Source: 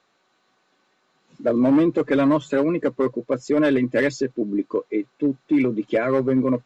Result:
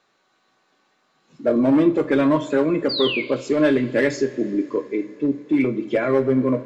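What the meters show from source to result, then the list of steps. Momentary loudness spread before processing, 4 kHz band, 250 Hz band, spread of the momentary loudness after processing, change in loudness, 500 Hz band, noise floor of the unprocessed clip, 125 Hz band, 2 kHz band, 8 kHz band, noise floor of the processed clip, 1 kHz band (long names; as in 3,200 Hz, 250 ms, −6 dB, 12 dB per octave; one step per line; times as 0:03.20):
7 LU, +12.0 dB, +0.5 dB, 7 LU, +1.0 dB, +1.5 dB, −67 dBFS, +1.0 dB, +2.0 dB, can't be measured, −66 dBFS, +0.5 dB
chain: sound drawn into the spectrogram fall, 0:02.89–0:03.22, 2,100–4,900 Hz −26 dBFS
coupled-rooms reverb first 0.32 s, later 3.9 s, from −20 dB, DRR 6.5 dB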